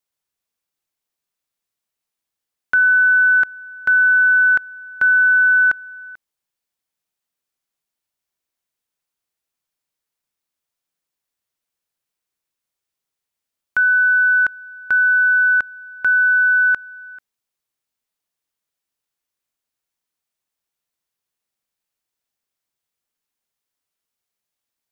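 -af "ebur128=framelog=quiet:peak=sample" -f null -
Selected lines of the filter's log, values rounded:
Integrated loudness:
  I:         -14.1 LUFS
  Threshold: -24.8 LUFS
Loudness range:
  LRA:         8.3 LU
  Threshold: -37.0 LUFS
  LRA low:   -22.2 LUFS
  LRA high:  -13.9 LUFS
Sample peak:
  Peak:      -10.0 dBFS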